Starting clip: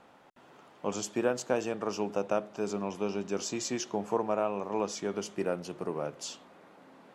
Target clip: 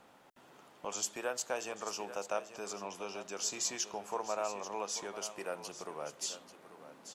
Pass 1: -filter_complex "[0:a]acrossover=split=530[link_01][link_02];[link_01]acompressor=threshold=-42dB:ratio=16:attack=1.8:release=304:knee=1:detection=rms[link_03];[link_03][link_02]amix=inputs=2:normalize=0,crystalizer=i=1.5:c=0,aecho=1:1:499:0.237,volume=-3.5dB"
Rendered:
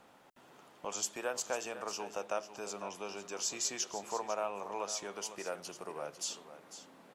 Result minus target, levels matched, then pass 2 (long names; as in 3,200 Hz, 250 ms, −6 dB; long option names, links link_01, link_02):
echo 340 ms early
-filter_complex "[0:a]acrossover=split=530[link_01][link_02];[link_01]acompressor=threshold=-42dB:ratio=16:attack=1.8:release=304:knee=1:detection=rms[link_03];[link_03][link_02]amix=inputs=2:normalize=0,crystalizer=i=1.5:c=0,aecho=1:1:839:0.237,volume=-3.5dB"